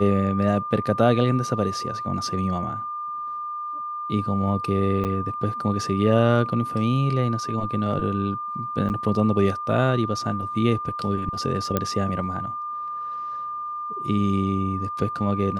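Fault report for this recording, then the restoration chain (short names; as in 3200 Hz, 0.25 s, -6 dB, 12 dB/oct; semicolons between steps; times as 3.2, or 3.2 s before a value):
tone 1200 Hz -28 dBFS
5.04–5.05 gap 8.9 ms
8.89–8.9 gap 9.2 ms
11.77 pop -8 dBFS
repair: de-click; notch 1200 Hz, Q 30; interpolate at 5.04, 8.9 ms; interpolate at 8.89, 9.2 ms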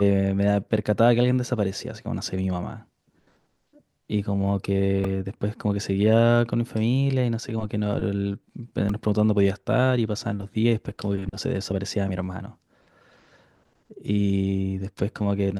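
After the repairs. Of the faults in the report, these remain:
none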